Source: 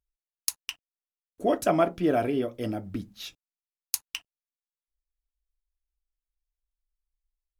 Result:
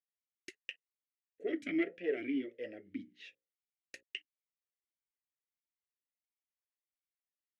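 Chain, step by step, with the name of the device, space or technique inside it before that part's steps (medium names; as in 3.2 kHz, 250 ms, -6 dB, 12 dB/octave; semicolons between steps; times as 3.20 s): talk box (valve stage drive 16 dB, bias 0.55; talking filter e-i 1.5 Hz); 2.81–4.03 s: hum notches 60/120/180/240/300/360/420/480/540 Hz; ten-band graphic EQ 1 kHz -5 dB, 2 kHz +11 dB, 8 kHz +8 dB, 16 kHz -12 dB; trim +1 dB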